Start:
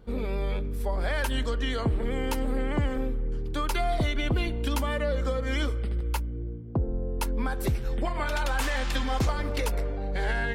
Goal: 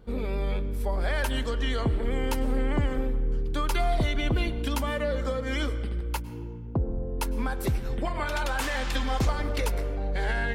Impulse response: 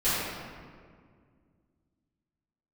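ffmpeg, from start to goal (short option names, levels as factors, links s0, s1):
-filter_complex "[0:a]asplit=2[s0][s1];[1:a]atrim=start_sample=2205,asetrate=57330,aresample=44100,adelay=99[s2];[s1][s2]afir=irnorm=-1:irlink=0,volume=0.0473[s3];[s0][s3]amix=inputs=2:normalize=0"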